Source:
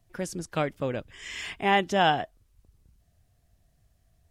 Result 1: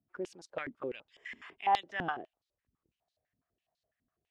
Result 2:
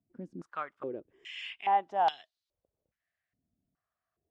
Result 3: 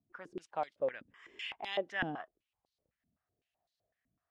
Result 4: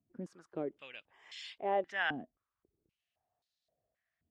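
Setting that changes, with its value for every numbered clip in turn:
band-pass on a step sequencer, speed: 12, 2.4, 7.9, 3.8 Hertz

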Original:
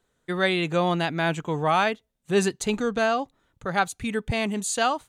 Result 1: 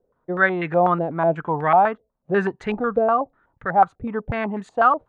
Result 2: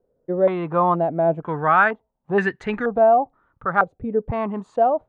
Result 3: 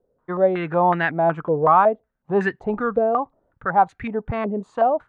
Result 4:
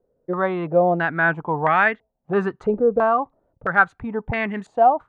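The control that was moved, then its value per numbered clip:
low-pass on a step sequencer, speed: 8.1, 2.1, 5.4, 3 Hertz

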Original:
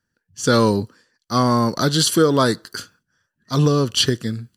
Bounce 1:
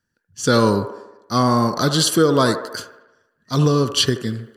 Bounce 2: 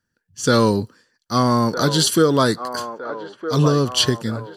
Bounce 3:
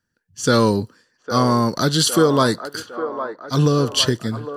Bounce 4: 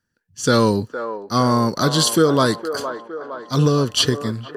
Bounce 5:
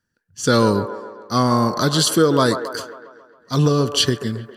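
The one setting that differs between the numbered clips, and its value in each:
delay with a band-pass on its return, delay time: 77, 1,261, 807, 462, 136 milliseconds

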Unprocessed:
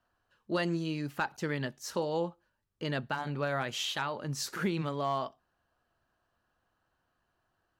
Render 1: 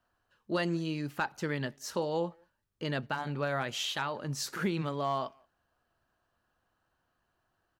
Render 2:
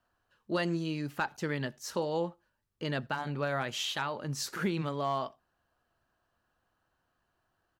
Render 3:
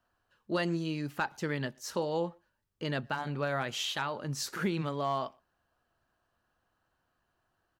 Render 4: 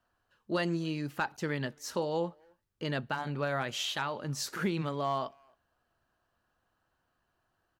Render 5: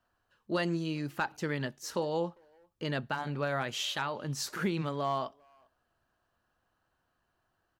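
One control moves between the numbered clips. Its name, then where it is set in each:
far-end echo of a speakerphone, delay time: 180, 80, 120, 270, 400 milliseconds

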